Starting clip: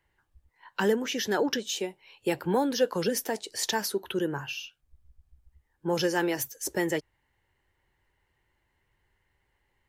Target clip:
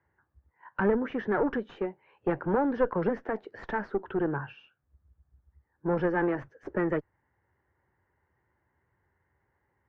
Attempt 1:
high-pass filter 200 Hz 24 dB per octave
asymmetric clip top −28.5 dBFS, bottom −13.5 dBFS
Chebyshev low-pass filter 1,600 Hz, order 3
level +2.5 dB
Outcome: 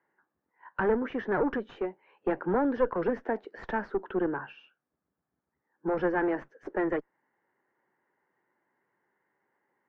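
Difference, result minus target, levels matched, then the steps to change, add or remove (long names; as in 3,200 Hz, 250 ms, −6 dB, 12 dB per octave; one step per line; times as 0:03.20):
125 Hz band −6.0 dB
change: high-pass filter 66 Hz 24 dB per octave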